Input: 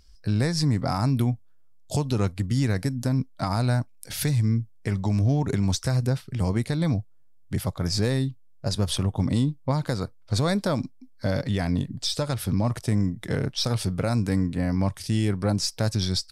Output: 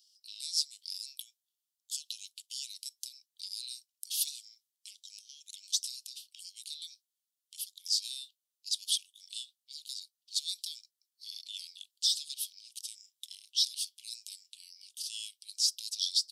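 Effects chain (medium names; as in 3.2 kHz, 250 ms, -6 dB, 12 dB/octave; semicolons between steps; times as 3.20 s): steep high-pass 2.9 kHz 72 dB/octave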